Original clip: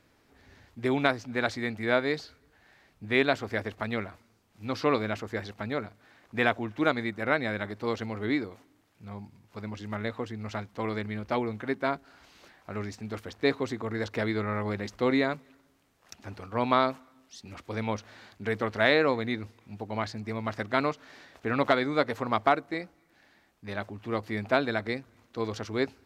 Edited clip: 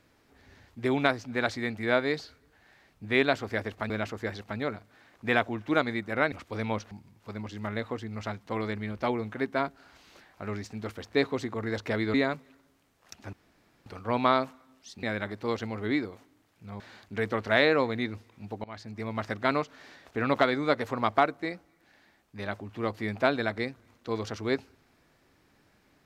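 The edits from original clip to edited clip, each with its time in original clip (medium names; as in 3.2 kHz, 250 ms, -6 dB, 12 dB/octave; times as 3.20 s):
3.90–5.00 s: delete
7.42–9.19 s: swap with 17.50–18.09 s
14.42–15.14 s: delete
16.33 s: insert room tone 0.53 s
19.93–20.56 s: fade in equal-power, from -22.5 dB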